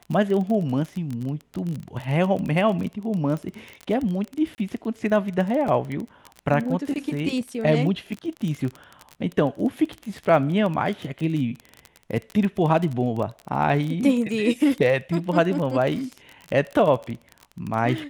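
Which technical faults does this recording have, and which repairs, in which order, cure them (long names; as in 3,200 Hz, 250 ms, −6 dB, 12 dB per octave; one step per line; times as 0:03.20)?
surface crackle 24 per second −27 dBFS
0:04.55–0:04.58: drop-out 29 ms
0:05.68: drop-out 3.6 ms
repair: click removal
repair the gap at 0:04.55, 29 ms
repair the gap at 0:05.68, 3.6 ms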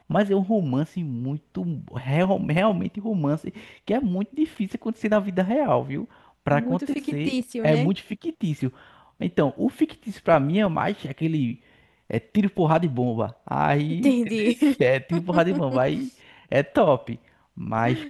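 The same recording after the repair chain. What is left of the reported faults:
none of them is left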